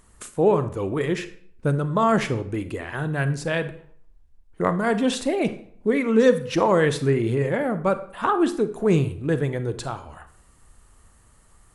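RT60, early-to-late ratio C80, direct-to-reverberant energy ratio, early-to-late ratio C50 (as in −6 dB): 0.60 s, 17.5 dB, 11.0 dB, 13.5 dB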